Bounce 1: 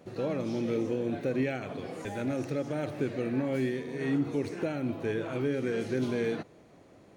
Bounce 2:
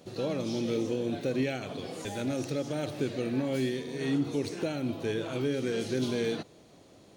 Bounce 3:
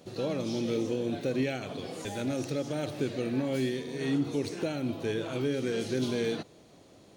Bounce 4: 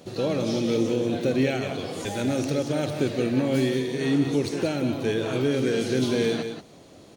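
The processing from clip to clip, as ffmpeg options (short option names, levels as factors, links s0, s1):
-af "highshelf=f=2700:t=q:w=1.5:g=7"
-af anull
-af "aecho=1:1:182:0.398,volume=2"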